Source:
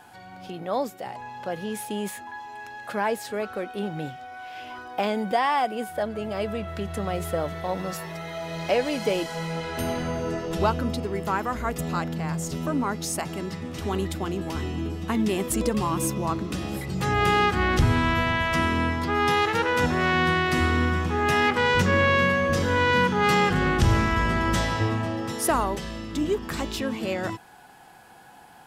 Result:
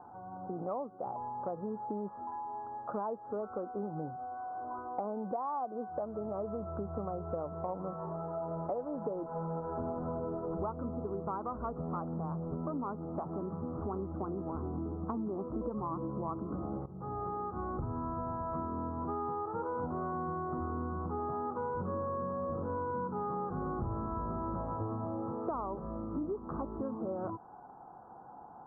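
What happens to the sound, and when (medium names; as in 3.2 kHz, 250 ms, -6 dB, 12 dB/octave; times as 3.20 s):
16.86–19.11 s: fade in, from -16 dB
whole clip: steep low-pass 1.3 kHz 72 dB/octave; bass shelf 170 Hz -5.5 dB; compression 6:1, threshold -34 dBFS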